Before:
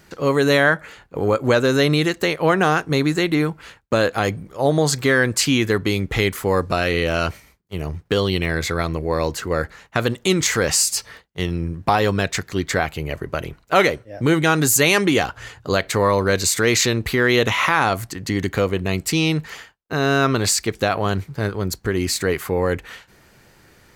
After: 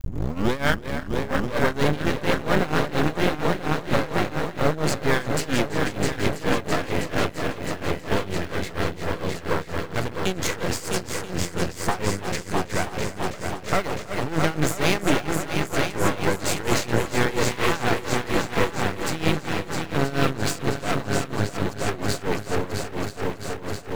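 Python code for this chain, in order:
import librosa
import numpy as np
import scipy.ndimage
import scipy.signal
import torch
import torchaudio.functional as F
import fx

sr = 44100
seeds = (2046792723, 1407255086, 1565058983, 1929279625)

p1 = fx.tape_start_head(x, sr, length_s=0.58)
p2 = fx.high_shelf(p1, sr, hz=7400.0, db=-8.5)
p3 = p2 + fx.echo_heads(p2, sr, ms=328, heads='all three', feedback_pct=71, wet_db=-9, dry=0)
p4 = fx.dmg_crackle(p3, sr, seeds[0], per_s=180.0, level_db=-31.0)
p5 = p4 * (1.0 - 0.84 / 2.0 + 0.84 / 2.0 * np.cos(2.0 * np.pi * 4.3 * (np.arange(len(p4)) / sr)))
p6 = fx.sample_hold(p5, sr, seeds[1], rate_hz=6900.0, jitter_pct=0)
p7 = p5 + (p6 * 10.0 ** (-11.0 / 20.0))
p8 = np.maximum(p7, 0.0)
y = p8 * 10.0 ** (-1.0 / 20.0)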